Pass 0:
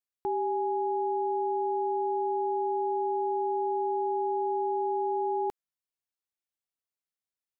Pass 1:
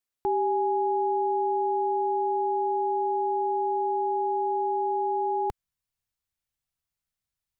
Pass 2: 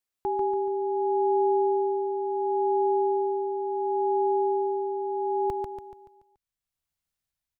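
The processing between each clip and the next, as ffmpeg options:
-af "asubboost=boost=7.5:cutoff=120,volume=1.68"
-filter_complex "[0:a]tremolo=f=0.71:d=0.56,asplit=2[s0][s1];[s1]aecho=0:1:143|286|429|572|715|858:0.631|0.29|0.134|0.0614|0.0283|0.013[s2];[s0][s2]amix=inputs=2:normalize=0"

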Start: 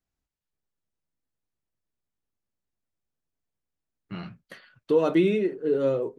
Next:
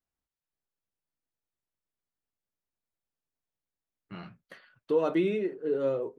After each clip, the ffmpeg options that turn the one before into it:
-af "equalizer=f=940:w=0.37:g=5.5,volume=0.376"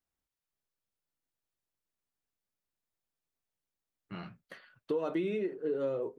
-af "acompressor=threshold=0.0355:ratio=6"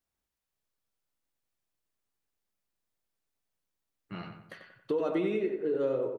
-filter_complex "[0:a]asplit=2[s0][s1];[s1]adelay=92,lowpass=f=2700:p=1,volume=0.501,asplit=2[s2][s3];[s3]adelay=92,lowpass=f=2700:p=1,volume=0.46,asplit=2[s4][s5];[s5]adelay=92,lowpass=f=2700:p=1,volume=0.46,asplit=2[s6][s7];[s7]adelay=92,lowpass=f=2700:p=1,volume=0.46,asplit=2[s8][s9];[s9]adelay=92,lowpass=f=2700:p=1,volume=0.46,asplit=2[s10][s11];[s11]adelay=92,lowpass=f=2700:p=1,volume=0.46[s12];[s0][s2][s4][s6][s8][s10][s12]amix=inputs=7:normalize=0,volume=1.26"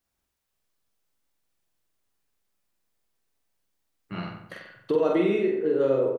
-filter_complex "[0:a]asplit=2[s0][s1];[s1]adelay=45,volume=0.708[s2];[s0][s2]amix=inputs=2:normalize=0,volume=1.78"

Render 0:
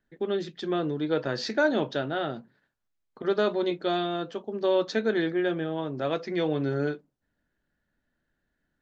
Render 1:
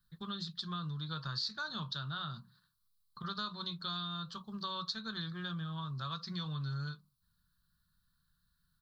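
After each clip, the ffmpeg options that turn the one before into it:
-af "firequalizer=gain_entry='entry(180,0);entry(270,-26);entry(480,-27);entry(760,-22);entry(1100,3);entry(2100,-21);entry(4100,10);entry(6300,-4);entry(10000,9)':delay=0.05:min_phase=1,acompressor=threshold=0.00794:ratio=3,volume=1.5"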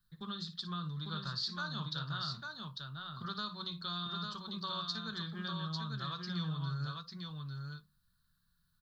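-af "aecho=1:1:57|848:0.224|0.631,volume=0.891"

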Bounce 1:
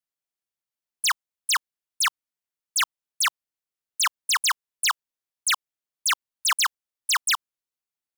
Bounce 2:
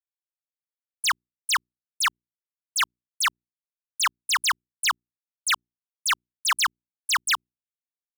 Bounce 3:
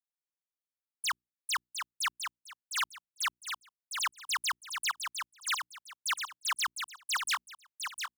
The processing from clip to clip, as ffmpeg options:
-af "aeval=exprs='sgn(val(0))*max(abs(val(0))-0.00119,0)':c=same,bass=f=250:g=8,treble=f=4000:g=-4,bandreject=f=60:t=h:w=6,bandreject=f=120:t=h:w=6,bandreject=f=180:t=h:w=6,bandreject=f=240:t=h:w=6,bandreject=f=300:t=h:w=6,bandreject=f=360:t=h:w=6,bandreject=f=420:t=h:w=6,volume=1.12"
-af "aecho=1:1:707|1414|2121:0.501|0.12|0.0289,volume=0.355"

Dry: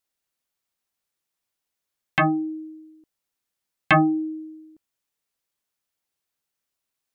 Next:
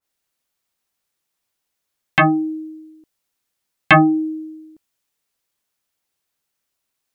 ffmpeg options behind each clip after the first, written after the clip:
-af "adynamicequalizer=threshold=0.02:dfrequency=2100:dqfactor=0.7:tfrequency=2100:tqfactor=0.7:attack=5:release=100:ratio=0.375:range=4:mode=boostabove:tftype=highshelf,volume=1.88"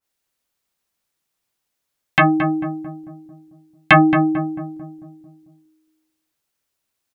-filter_complex "[0:a]asplit=2[s0][s1];[s1]adelay=222,lowpass=f=870:p=1,volume=0.562,asplit=2[s2][s3];[s3]adelay=222,lowpass=f=870:p=1,volume=0.55,asplit=2[s4][s5];[s5]adelay=222,lowpass=f=870:p=1,volume=0.55,asplit=2[s6][s7];[s7]adelay=222,lowpass=f=870:p=1,volume=0.55,asplit=2[s8][s9];[s9]adelay=222,lowpass=f=870:p=1,volume=0.55,asplit=2[s10][s11];[s11]adelay=222,lowpass=f=870:p=1,volume=0.55,asplit=2[s12][s13];[s13]adelay=222,lowpass=f=870:p=1,volume=0.55[s14];[s0][s2][s4][s6][s8][s10][s12][s14]amix=inputs=8:normalize=0"

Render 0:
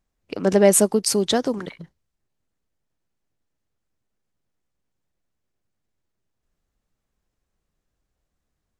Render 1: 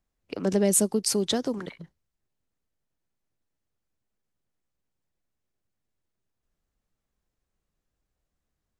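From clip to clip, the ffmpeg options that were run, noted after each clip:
-filter_complex "[0:a]acrossover=split=390|3000[s0][s1][s2];[s1]acompressor=threshold=0.0501:ratio=6[s3];[s0][s3][s2]amix=inputs=3:normalize=0,volume=0.631"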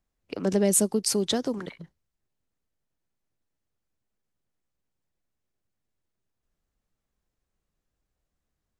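-af anull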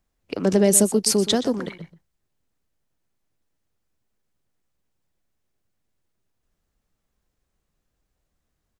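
-filter_complex "[0:a]asplit=2[s0][s1];[s1]adelay=122.4,volume=0.2,highshelf=f=4000:g=-2.76[s2];[s0][s2]amix=inputs=2:normalize=0,volume=1.88"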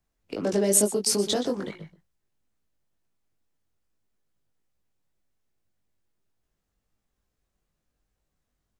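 -filter_complex "[0:a]acrossover=split=300|1000|3400[s0][s1][s2][s3];[s0]acompressor=threshold=0.0355:ratio=6[s4];[s2]asoftclip=type=tanh:threshold=0.02[s5];[s4][s1][s5][s3]amix=inputs=4:normalize=0,flanger=delay=19:depth=2:speed=2.3"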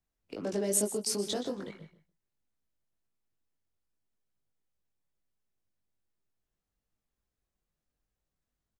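-af "aecho=1:1:157:0.158,volume=0.398"

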